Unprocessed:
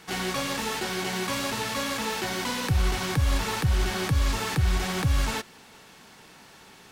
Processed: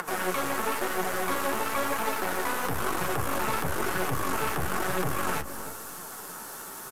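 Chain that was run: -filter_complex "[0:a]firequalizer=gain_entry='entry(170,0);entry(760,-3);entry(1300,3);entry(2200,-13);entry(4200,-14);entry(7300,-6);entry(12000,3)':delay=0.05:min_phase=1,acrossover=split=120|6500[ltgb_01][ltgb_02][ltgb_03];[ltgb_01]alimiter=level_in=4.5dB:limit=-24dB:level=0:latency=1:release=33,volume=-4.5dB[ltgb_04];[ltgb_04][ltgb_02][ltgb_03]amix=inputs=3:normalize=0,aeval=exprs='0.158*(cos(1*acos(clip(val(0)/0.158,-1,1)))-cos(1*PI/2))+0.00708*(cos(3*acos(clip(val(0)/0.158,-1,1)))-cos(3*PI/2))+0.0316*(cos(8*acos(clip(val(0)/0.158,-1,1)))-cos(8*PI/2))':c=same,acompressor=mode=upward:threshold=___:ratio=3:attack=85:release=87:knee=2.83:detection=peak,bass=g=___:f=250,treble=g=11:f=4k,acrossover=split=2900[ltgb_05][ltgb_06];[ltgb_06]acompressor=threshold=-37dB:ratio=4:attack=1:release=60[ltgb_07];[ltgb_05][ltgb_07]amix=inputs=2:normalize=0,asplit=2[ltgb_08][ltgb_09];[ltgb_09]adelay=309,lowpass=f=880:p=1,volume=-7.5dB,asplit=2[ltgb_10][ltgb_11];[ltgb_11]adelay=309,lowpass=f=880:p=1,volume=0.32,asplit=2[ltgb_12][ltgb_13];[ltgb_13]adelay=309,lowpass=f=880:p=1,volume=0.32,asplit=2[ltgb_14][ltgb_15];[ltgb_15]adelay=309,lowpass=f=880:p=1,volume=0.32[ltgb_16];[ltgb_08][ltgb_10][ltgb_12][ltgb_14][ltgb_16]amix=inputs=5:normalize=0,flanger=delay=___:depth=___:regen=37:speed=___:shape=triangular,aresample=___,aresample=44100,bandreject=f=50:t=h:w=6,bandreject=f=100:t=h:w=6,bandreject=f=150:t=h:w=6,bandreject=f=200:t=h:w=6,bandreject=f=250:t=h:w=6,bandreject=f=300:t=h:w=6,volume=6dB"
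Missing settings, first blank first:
-42dB, -10, 5.4, 9.4, 1, 32000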